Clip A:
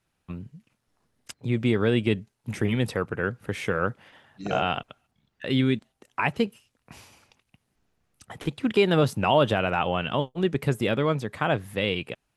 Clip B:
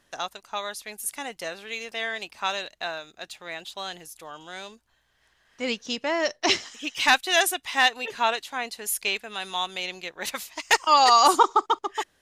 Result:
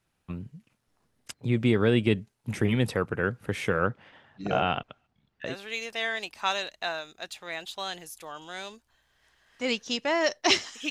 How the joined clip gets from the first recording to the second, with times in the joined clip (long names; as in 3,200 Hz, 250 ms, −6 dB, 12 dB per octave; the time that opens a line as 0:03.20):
clip A
0:03.87–0:05.55: high-frequency loss of the air 99 metres
0:05.50: continue with clip B from 0:01.49, crossfade 0.10 s